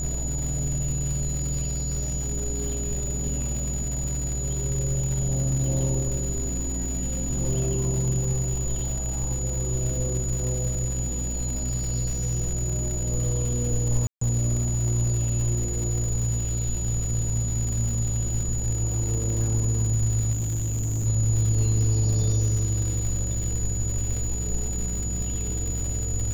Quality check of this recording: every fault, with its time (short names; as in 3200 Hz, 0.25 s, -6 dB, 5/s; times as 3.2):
buzz 60 Hz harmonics 14 -30 dBFS
crackle 250/s -31 dBFS
tone 6900 Hz -31 dBFS
14.07–14.21 gap 0.144 s
20.32–21.07 clipped -23.5 dBFS